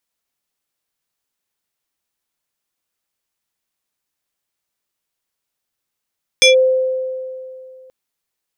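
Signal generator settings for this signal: FM tone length 1.48 s, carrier 518 Hz, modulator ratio 5.56, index 2.1, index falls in 0.13 s linear, decay 2.51 s, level -5 dB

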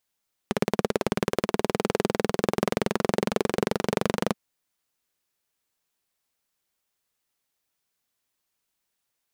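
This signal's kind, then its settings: single-cylinder engine model, changing speed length 3.83 s, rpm 2100, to 2900, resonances 210/400 Hz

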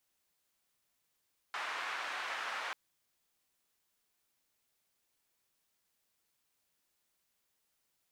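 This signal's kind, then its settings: noise band 1.1–1.5 kHz, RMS -39.5 dBFS 1.19 s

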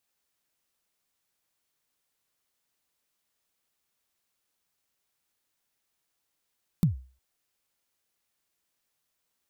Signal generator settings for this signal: kick drum length 0.36 s, from 190 Hz, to 64 Hz, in 125 ms, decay 0.38 s, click on, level -15 dB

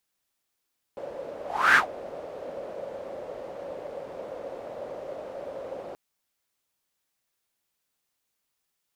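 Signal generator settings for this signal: whoosh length 4.98 s, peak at 0.79 s, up 0.35 s, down 0.12 s, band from 550 Hz, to 1.6 kHz, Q 6, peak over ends 20.5 dB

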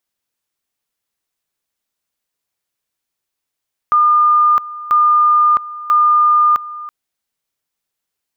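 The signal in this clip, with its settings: two-level tone 1.21 kHz -8 dBFS, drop 17.5 dB, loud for 0.66 s, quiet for 0.33 s, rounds 3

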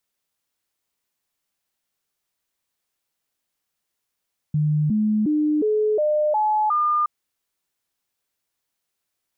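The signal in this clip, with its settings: stepped sine 151 Hz up, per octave 2, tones 7, 0.36 s, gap 0.00 s -17 dBFS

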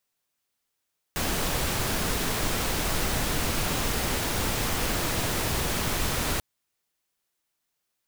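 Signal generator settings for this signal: noise pink, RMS -27 dBFS 5.24 s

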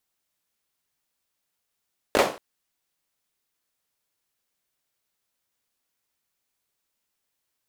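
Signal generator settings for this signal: hand clap length 0.23 s, bursts 3, apart 19 ms, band 530 Hz, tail 0.37 s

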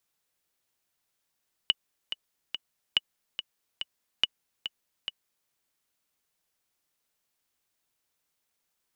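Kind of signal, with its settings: metronome 142 bpm, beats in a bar 3, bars 3, 2.94 kHz, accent 10.5 dB -8.5 dBFS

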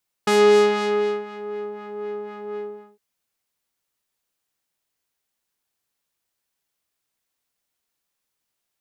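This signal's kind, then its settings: synth patch with filter wobble G#4, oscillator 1 triangle, oscillator 2 saw, interval 0 st, oscillator 2 level -2 dB, filter lowpass, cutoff 680 Hz, Q 0.73, filter envelope 3.5 oct, filter decay 1.39 s, filter sustain 30%, attack 5.3 ms, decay 0.98 s, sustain -18 dB, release 0.42 s, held 2.29 s, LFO 4 Hz, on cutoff 0.5 oct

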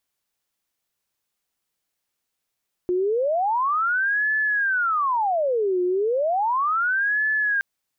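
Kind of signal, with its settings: siren wail 358–1730 Hz 0.34 per s sine -19 dBFS 4.72 s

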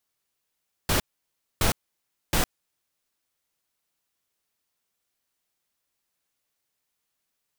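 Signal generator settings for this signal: noise bursts pink, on 0.11 s, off 0.61 s, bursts 3, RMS -22 dBFS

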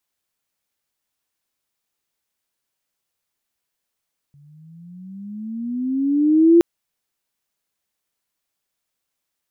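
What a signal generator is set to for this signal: gliding synth tone sine, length 2.27 s, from 141 Hz, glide +15.5 st, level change +39.5 dB, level -7 dB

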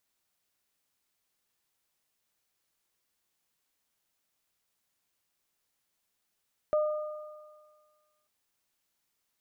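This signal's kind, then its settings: additive tone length 1.54 s, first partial 608 Hz, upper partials -12.5 dB, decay 1.54 s, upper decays 1.98 s, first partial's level -22 dB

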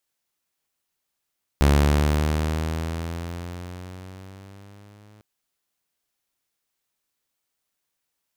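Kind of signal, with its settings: gliding synth tone saw, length 3.60 s, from 70.8 Hz, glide +7 st, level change -35.5 dB, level -11 dB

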